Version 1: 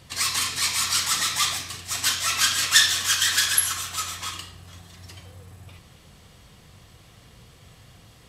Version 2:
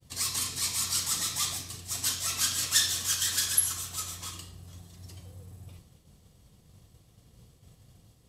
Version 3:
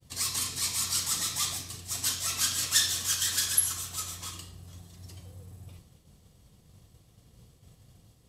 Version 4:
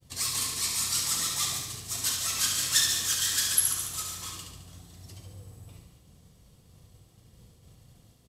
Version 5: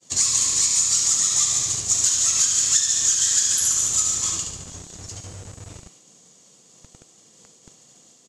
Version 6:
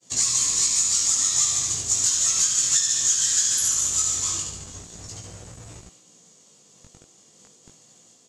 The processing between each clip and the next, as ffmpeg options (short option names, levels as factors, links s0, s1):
-af "agate=range=0.0224:threshold=0.00562:ratio=3:detection=peak,equalizer=f=1800:w=0.46:g=-12.5,acontrast=46,volume=0.447"
-af anull
-af "aecho=1:1:71|142|213|284|355|426|497|568:0.501|0.296|0.174|0.103|0.0607|0.0358|0.0211|0.0125"
-filter_complex "[0:a]acrossover=split=200[s0][s1];[s0]acrusher=bits=7:mix=0:aa=0.000001[s2];[s2][s1]amix=inputs=2:normalize=0,lowpass=f=6900:t=q:w=7.7,acompressor=threshold=0.0794:ratio=10,volume=2"
-af "flanger=delay=16:depth=4.7:speed=0.35,volume=1.19"